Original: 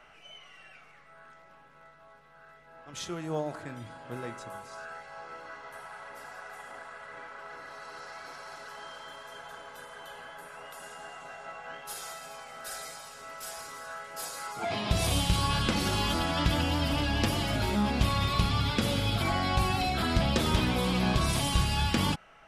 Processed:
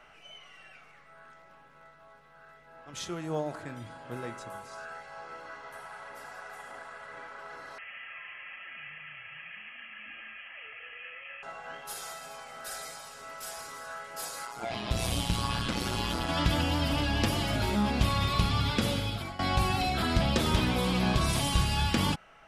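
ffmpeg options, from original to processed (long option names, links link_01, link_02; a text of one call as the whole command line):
ffmpeg -i in.wav -filter_complex "[0:a]asettb=1/sr,asplit=3[link_01][link_02][link_03];[link_01]atrim=end=7.784[link_04];[link_02]atrim=start=7.78:end=11.43,asetpts=PTS-STARTPTS,afade=type=in:duration=0.004:curve=qsin,afade=type=out:start_time=3.646:duration=0.004:curve=qsin,lowpass=frequency=2800:width_type=q:width=0.5098,lowpass=frequency=2800:width_type=q:width=0.6013,lowpass=frequency=2800:width_type=q:width=0.9,lowpass=frequency=2800:width_type=q:width=2.563,afreqshift=-3300[link_05];[link_03]atrim=start=11.426[link_06];[link_04][link_05]acrossfade=duration=0.004:curve1=hsin:curve2=qsin[link_07];[link_07][link_06]acrossfade=duration=0.004:curve1=qsin:curve2=hsin,asettb=1/sr,asplit=3[link_08][link_09][link_10];[link_08]atrim=end=14.454[link_11];[link_09]atrim=start=14.45:end=16.29,asetpts=PTS-STARTPTS,afade=type=in:duration=0.004:curve=qsin,afade=type=out:start_time=1.836:duration=0.004:curve=qsin,tremolo=f=120:d=0.71[link_12];[link_10]atrim=start=16.286[link_13];[link_11][link_12]acrossfade=duration=0.004:curve1=hsin:curve2=qsin[link_14];[link_14][link_13]acrossfade=duration=0.004:curve1=qsin:curve2=hsin,asplit=2[link_15][link_16];[link_15]atrim=end=19.39,asetpts=PTS-STARTPTS,afade=type=out:start_time=18.86:duration=0.53:silence=0.133352[link_17];[link_16]atrim=start=19.39,asetpts=PTS-STARTPTS,afade=type=in:duration=0.004:curve=hsin:silence=0.133352[link_18];[link_17][link_18]concat=n=2:v=0:a=1" out.wav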